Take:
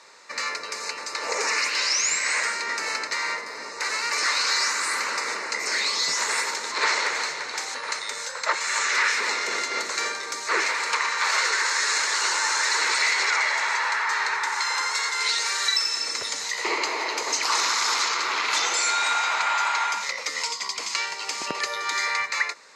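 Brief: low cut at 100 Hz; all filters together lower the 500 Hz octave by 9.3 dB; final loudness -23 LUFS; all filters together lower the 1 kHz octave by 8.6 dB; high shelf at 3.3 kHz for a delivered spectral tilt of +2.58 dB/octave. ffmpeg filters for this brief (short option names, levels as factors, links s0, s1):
-af "highpass=100,equalizer=f=500:t=o:g=-9,equalizer=f=1000:t=o:g=-9,highshelf=f=3300:g=-4,volume=1.68"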